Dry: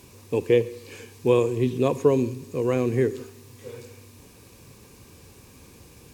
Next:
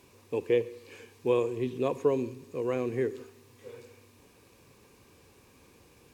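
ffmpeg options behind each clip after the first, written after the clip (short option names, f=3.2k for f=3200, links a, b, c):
-af "bass=f=250:g=-7,treble=f=4k:g=-6,volume=-5.5dB"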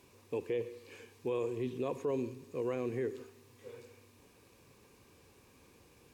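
-af "alimiter=limit=-23dB:level=0:latency=1:release=27,volume=-3.5dB"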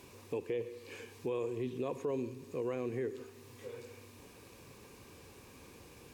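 -af "acompressor=threshold=-55dB:ratio=1.5,volume=7dB"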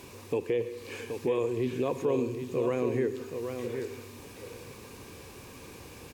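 -af "aecho=1:1:775:0.447,volume=7.5dB"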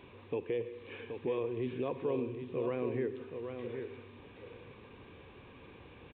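-af "aresample=8000,aresample=44100,volume=-6dB"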